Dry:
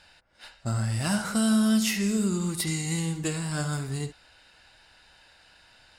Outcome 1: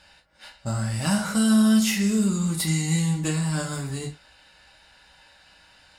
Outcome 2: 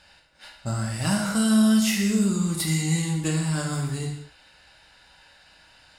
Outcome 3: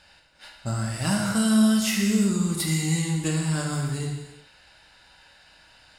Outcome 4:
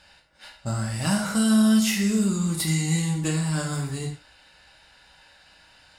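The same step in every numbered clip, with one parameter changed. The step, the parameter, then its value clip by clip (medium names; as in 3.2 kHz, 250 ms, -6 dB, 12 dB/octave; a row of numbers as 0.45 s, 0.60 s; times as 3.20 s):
gated-style reverb, gate: 80 ms, 230 ms, 390 ms, 140 ms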